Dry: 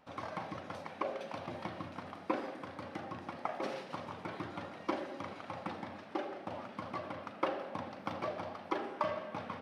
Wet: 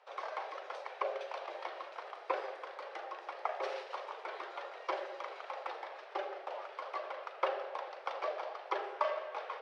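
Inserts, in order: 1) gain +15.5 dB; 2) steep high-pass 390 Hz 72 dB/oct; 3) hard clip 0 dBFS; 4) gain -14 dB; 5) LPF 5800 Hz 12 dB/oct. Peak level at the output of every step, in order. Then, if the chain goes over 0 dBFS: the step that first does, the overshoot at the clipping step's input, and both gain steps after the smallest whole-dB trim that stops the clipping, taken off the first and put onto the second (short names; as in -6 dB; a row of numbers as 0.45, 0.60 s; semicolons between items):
-3.0, -2.0, -2.0, -16.0, -16.0 dBFS; no overload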